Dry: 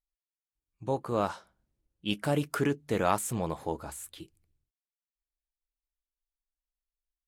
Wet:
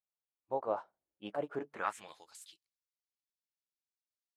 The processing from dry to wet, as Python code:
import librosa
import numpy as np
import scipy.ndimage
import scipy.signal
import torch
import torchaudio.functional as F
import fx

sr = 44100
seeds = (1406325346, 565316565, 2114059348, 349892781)

y = fx.filter_sweep_bandpass(x, sr, from_hz=710.0, to_hz=4800.0, start_s=2.7, end_s=3.68, q=1.7)
y = fx.stretch_grains(y, sr, factor=0.6, grain_ms=157.0)